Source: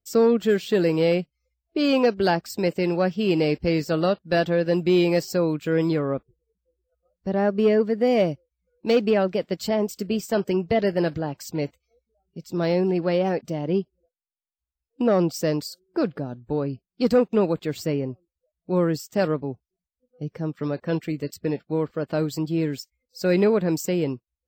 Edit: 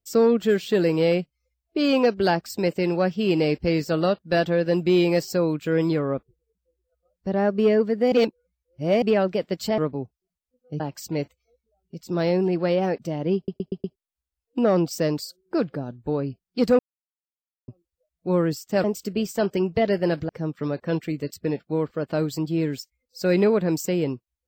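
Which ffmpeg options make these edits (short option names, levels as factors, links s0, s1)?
-filter_complex "[0:a]asplit=14[s0][s1][s2][s3][s4][s5][s6][s7][s8][s9][s10][s11][s12][s13];[s0]atrim=end=8.122[s14];[s1]atrim=start=8.118:end=9.022,asetpts=PTS-STARTPTS,areverse[s15];[s2]atrim=start=9.018:end=9.782[s16];[s3]atrim=start=19.268:end=20.292[s17];[s4]atrim=start=11.228:end=13.912[s18];[s5]atrim=start=13.788:end=13.912[s19];[s6]atrim=start=13.788:end=13.912[s20];[s7]atrim=start=13.788:end=13.912[s21];[s8]atrim=start=13.788:end=13.912[s22];[s9]atrim=start=14.388:end=17.22,asetpts=PTS-STARTPTS,afade=t=out:st=2.828:d=0.004:c=hsin[s23];[s10]atrim=start=17.22:end=18.11,asetpts=PTS-STARTPTS,volume=0[s24];[s11]atrim=start=18.11:end=19.272,asetpts=PTS-STARTPTS,afade=t=in:d=0.004:c=hsin[s25];[s12]atrim=start=9.778:end=11.232[s26];[s13]atrim=start=20.288[s27];[s14][s15]acrossfade=d=0.004:c1=hsin:c2=hsin[s28];[s28][s16]acrossfade=d=0.004:c1=hsin:c2=hsin[s29];[s29][s17]acrossfade=d=0.004:c1=hsin:c2=hsin[s30];[s30][s18]acrossfade=d=0.004:c1=hsin:c2=hsin[s31];[s31][s19]acrossfade=d=0.004:c1=hsin:c2=hsin[s32];[s32][s20]acrossfade=d=0.004:c1=hsin:c2=hsin[s33];[s33][s21]acrossfade=d=0.004:c1=hsin:c2=hsin[s34];[s34][s22]acrossfade=d=0.004:c1=hsin:c2=hsin[s35];[s23][s24][s25]concat=n=3:v=0:a=1[s36];[s35][s36]acrossfade=d=0.004:c1=hsin:c2=hsin[s37];[s37][s26]acrossfade=d=0.004:c1=hsin:c2=hsin[s38];[s38][s27]acrossfade=d=0.004:c1=hsin:c2=hsin"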